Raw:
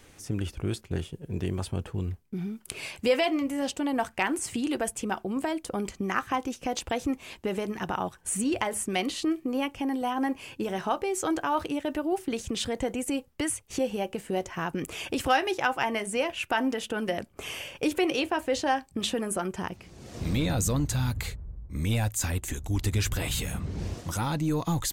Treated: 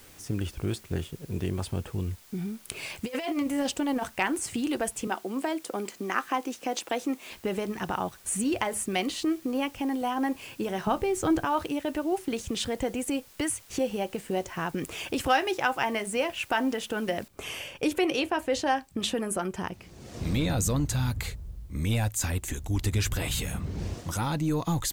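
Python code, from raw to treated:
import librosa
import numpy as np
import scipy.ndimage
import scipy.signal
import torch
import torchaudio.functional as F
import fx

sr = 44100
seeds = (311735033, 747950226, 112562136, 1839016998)

y = fx.over_compress(x, sr, threshold_db=-28.0, ratio=-0.5, at=(2.9, 4.1))
y = fx.highpass(y, sr, hz=230.0, slope=24, at=(5.07, 7.31))
y = fx.bass_treble(y, sr, bass_db=14, treble_db=-3, at=(10.87, 11.45))
y = fx.noise_floor_step(y, sr, seeds[0], at_s=17.28, before_db=-55, after_db=-69, tilt_db=0.0)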